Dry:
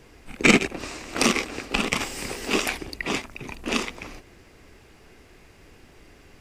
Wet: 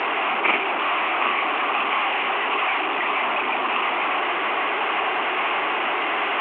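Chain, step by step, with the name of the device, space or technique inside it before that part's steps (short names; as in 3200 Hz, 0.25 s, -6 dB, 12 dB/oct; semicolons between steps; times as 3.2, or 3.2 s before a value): digital answering machine (BPF 340–3100 Hz; delta modulation 16 kbps, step -16 dBFS; speaker cabinet 480–4100 Hz, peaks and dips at 500 Hz -8 dB, 770 Hz +4 dB, 1100 Hz +6 dB, 1700 Hz -4 dB, 2800 Hz +3 dB, 3900 Hz -6 dB)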